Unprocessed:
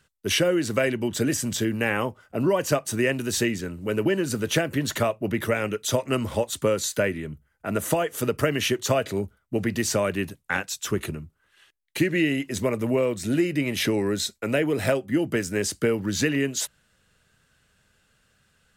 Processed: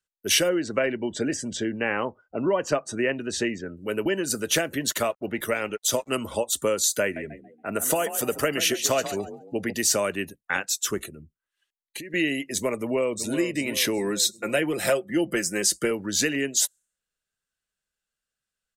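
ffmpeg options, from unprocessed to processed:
ffmpeg -i in.wav -filter_complex "[0:a]asettb=1/sr,asplit=3[link_01][link_02][link_03];[link_01]atrim=end=0.494[link_04];[link_02]atrim=start=0.49:end=3.77,asetpts=PTS-STARTPTS,afade=type=in:duration=0.004:curve=qsin,afade=type=out:start_time=3.276:duration=0.004:curve=qsin,aemphasis=mode=reproduction:type=75fm[link_05];[link_03]atrim=start=3.766[link_06];[link_04][link_05]acrossfade=duration=0.004:curve1=hsin:curve2=qsin[link_07];[link_07][link_06]acrossfade=duration=0.004:curve1=qsin:curve2=hsin,asettb=1/sr,asplit=3[link_08][link_09][link_10];[link_08]atrim=end=4.884[link_11];[link_09]atrim=start=4.88:end=6.14,asetpts=PTS-STARTPTS,afade=type=in:duration=0.004:curve=qsin,afade=type=out:start_time=1.256:duration=0.004:curve=qsin,aeval=exprs='sgn(val(0))*max(abs(val(0))-0.00668,0)':channel_layout=same[link_12];[link_10]atrim=start=6.136[link_13];[link_11][link_12]acrossfade=duration=0.004:curve1=hsin:curve2=qsin[link_14];[link_14][link_13]acrossfade=duration=0.004:curve1=qsin:curve2=hsin,asettb=1/sr,asplit=3[link_15][link_16][link_17];[link_15]atrim=end=7.024[link_18];[link_16]atrim=start=7.02:end=9.73,asetpts=PTS-STARTPTS,afade=type=in:duration=0.004:curve=qsin,afade=type=out:start_time=2.706:duration=0.004:curve=qsin,asplit=5[link_19][link_20][link_21][link_22][link_23];[link_20]adelay=140,afreqshift=40,volume=-11.5dB[link_24];[link_21]adelay=280,afreqshift=80,volume=-19.2dB[link_25];[link_22]adelay=420,afreqshift=120,volume=-27dB[link_26];[link_23]adelay=560,afreqshift=160,volume=-34.7dB[link_27];[link_19][link_24][link_25][link_26][link_27]amix=inputs=5:normalize=0,atrim=end_sample=119511[link_28];[link_17]atrim=start=9.726[link_29];[link_18][link_28]acrossfade=duration=0.004:curve1=hsin:curve2=qsin[link_30];[link_30][link_29]acrossfade=duration=0.004:curve1=qsin:curve2=hsin,asettb=1/sr,asplit=3[link_31][link_32][link_33];[link_31]atrim=end=11.024[link_34];[link_32]atrim=start=11.02:end=12.14,asetpts=PTS-STARTPTS,afade=type=in:duration=0.004:curve=qsin,afade=type=out:start_time=1.116:duration=0.004:curve=qsin,acompressor=threshold=-33dB:ratio=6:attack=3.2:release=140:knee=1:detection=peak[link_35];[link_33]atrim=start=12.136[link_36];[link_34][link_35]acrossfade=duration=0.004:curve1=hsin:curve2=qsin[link_37];[link_37][link_36]acrossfade=duration=0.004:curve1=qsin:curve2=hsin,asplit=2[link_38][link_39];[link_39]afade=type=in:start_time=12.74:duration=0.01,afade=type=out:start_time=13.35:duration=0.01,aecho=0:1:380|760|1140|1520|1900|2280:0.334965|0.184231|0.101327|0.0557299|0.0306514|0.0168583[link_40];[link_38][link_40]amix=inputs=2:normalize=0,asettb=1/sr,asplit=3[link_41][link_42][link_43];[link_41]atrim=end=13.984[link_44];[link_42]atrim=start=13.98:end=15.91,asetpts=PTS-STARTPTS,afade=type=in:duration=0.004:curve=qsin,afade=type=out:start_time=1.926:duration=0.004:curve=qsin,aecho=1:1:5.7:0.53,atrim=end_sample=85113[link_45];[link_43]atrim=start=15.906[link_46];[link_44][link_45]acrossfade=duration=0.004:curve1=hsin:curve2=qsin[link_47];[link_47][link_46]acrossfade=duration=0.004:curve1=qsin:curve2=hsin,bass=frequency=250:gain=3,treble=frequency=4000:gain=7,afftdn=noise_reduction=24:noise_floor=-42,equalizer=frequency=110:width=0.73:gain=-14" out.wav

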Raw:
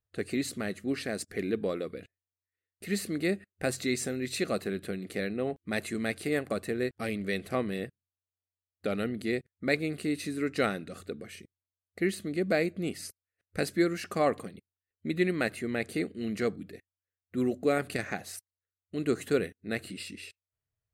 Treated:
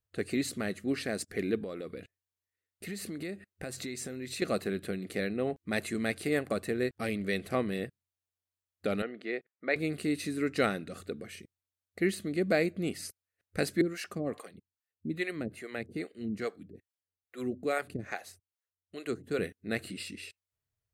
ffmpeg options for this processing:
ffmpeg -i in.wav -filter_complex "[0:a]asettb=1/sr,asplit=3[link_01][link_02][link_03];[link_01]atrim=end=1.634[link_04];[link_02]atrim=start=1.63:end=4.42,asetpts=PTS-STARTPTS,afade=type=in:duration=0.004:curve=qsin,afade=type=out:start_time=2.786:duration=0.004:curve=qsin,acompressor=threshold=-35dB:ratio=6:attack=3.2:release=140:knee=1:detection=peak[link_05];[link_03]atrim=start=4.416[link_06];[link_04][link_05]acrossfade=duration=0.004:curve1=hsin:curve2=qsin[link_07];[link_07][link_06]acrossfade=duration=0.004:curve1=qsin:curve2=hsin,asettb=1/sr,asplit=3[link_08][link_09][link_10];[link_08]atrim=end=9.024[link_11];[link_09]atrim=start=9.02:end=9.76,asetpts=PTS-STARTPTS,afade=type=in:duration=0.004:curve=qsin,afade=type=out:start_time=0.736:duration=0.004:curve=qsin,highpass=450,lowpass=2600[link_12];[link_10]atrim=start=9.756[link_13];[link_11][link_12]acrossfade=duration=0.004:curve1=hsin:curve2=qsin[link_14];[link_14][link_13]acrossfade=duration=0.004:curve1=qsin:curve2=hsin,asettb=1/sr,asplit=3[link_15][link_16][link_17];[link_15]atrim=end=13.814[link_18];[link_16]atrim=start=13.81:end=19.39,asetpts=PTS-STARTPTS,afade=type=in:duration=0.004:curve=qsin,afade=type=out:start_time=5.576:duration=0.004:curve=qsin,acrossover=split=430[link_19][link_20];[link_19]aeval=exprs='val(0)*(1-1/2+1/2*cos(2*PI*2.4*n/s))':channel_layout=same[link_21];[link_20]aeval=exprs='val(0)*(1-1/2-1/2*cos(2*PI*2.4*n/s))':channel_layout=same[link_22];[link_21][link_22]amix=inputs=2:normalize=0[link_23];[link_17]atrim=start=19.386[link_24];[link_18][link_23]acrossfade=duration=0.004:curve1=hsin:curve2=qsin[link_25];[link_25][link_24]acrossfade=duration=0.004:curve1=qsin:curve2=hsin" out.wav

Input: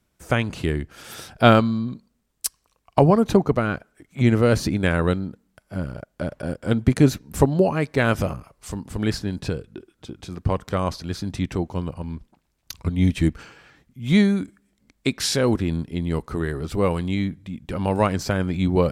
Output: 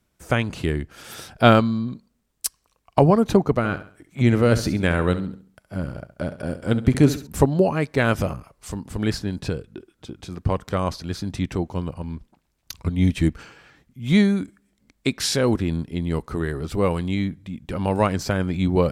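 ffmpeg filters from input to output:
ffmpeg -i in.wav -filter_complex "[0:a]asettb=1/sr,asplit=3[link_01][link_02][link_03];[link_01]atrim=end=3.574[link_04];[link_02]atrim=start=3.57:end=7.27,asetpts=PTS-STARTPTS,afade=type=in:duration=0.004:curve=qsin,afade=type=out:start_time=3.696:duration=0.004:curve=qsin,aecho=1:1:68|136|204|272:0.224|0.0806|0.029|0.0104,atrim=end_sample=163170[link_05];[link_03]atrim=start=7.266[link_06];[link_04][link_05]acrossfade=duration=0.004:curve1=hsin:curve2=qsin[link_07];[link_07][link_06]acrossfade=duration=0.004:curve1=qsin:curve2=hsin" out.wav

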